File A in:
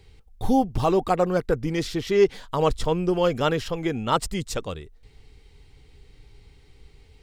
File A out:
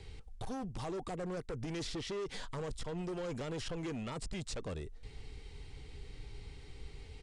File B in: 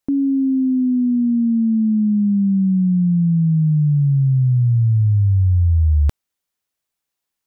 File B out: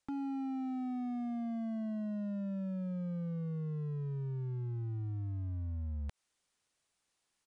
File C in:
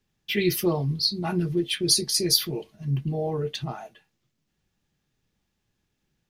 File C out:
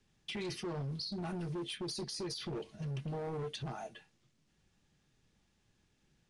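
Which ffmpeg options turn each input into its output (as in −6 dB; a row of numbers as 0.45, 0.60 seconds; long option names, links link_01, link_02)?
-filter_complex "[0:a]areverse,acompressor=threshold=-23dB:ratio=12,areverse,alimiter=limit=-22dB:level=0:latency=1:release=90,acrossover=split=500|5600[link_01][link_02][link_03];[link_01]acompressor=threshold=-39dB:ratio=4[link_04];[link_02]acompressor=threshold=-46dB:ratio=4[link_05];[link_03]acompressor=threshold=-53dB:ratio=4[link_06];[link_04][link_05][link_06]amix=inputs=3:normalize=0,asoftclip=type=hard:threshold=-38.5dB,aresample=22050,aresample=44100,volume=2.5dB"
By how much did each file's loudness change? −18.0, −22.0, −15.5 LU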